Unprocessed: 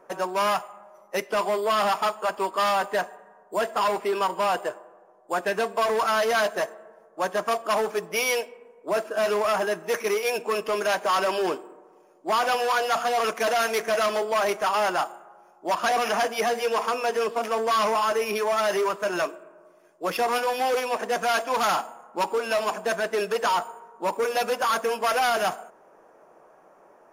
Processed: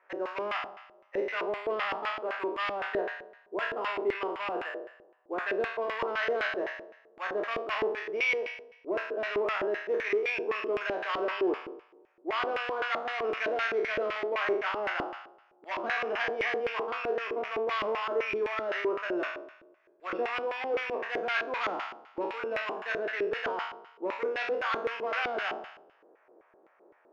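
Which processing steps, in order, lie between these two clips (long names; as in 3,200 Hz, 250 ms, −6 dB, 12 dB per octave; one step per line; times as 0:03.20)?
peak hold with a decay on every bin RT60 0.77 s
band-pass filter 210–4,300 Hz
auto-filter band-pass square 3.9 Hz 360–2,100 Hz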